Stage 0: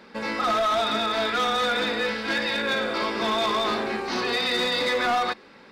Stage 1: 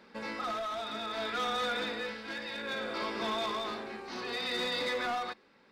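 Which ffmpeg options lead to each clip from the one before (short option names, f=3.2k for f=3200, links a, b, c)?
-af "tremolo=f=0.63:d=0.47,volume=-8.5dB"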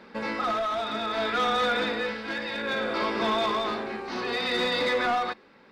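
-af "highshelf=f=4.7k:g=-9,volume=8.5dB"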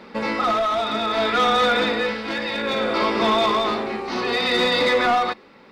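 -af "bandreject=f=1.6k:w=9.3,volume=7dB"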